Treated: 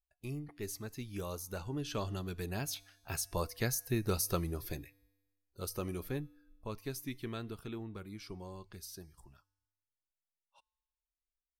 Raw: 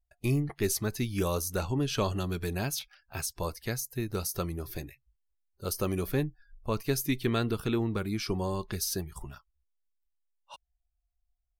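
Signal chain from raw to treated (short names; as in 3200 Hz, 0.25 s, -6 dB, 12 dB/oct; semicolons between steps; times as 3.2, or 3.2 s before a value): Doppler pass-by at 3.95, 6 m/s, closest 4.6 m; resonator 98 Hz, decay 1.2 s, harmonics odd, mix 40%; gain +4.5 dB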